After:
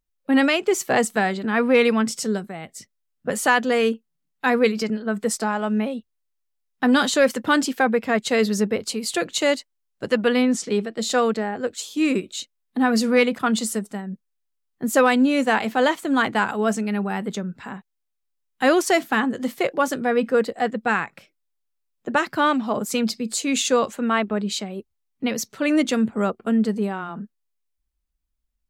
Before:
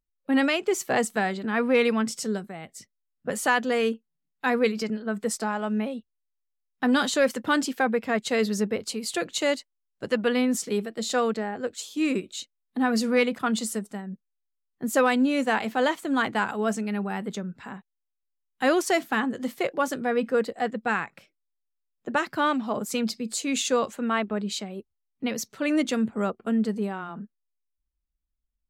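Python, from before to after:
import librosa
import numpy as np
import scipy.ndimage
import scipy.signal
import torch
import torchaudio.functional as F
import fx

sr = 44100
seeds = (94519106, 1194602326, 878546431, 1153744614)

y = fx.lowpass(x, sr, hz=7100.0, slope=12, at=(10.43, 10.99))
y = y * librosa.db_to_amplitude(4.5)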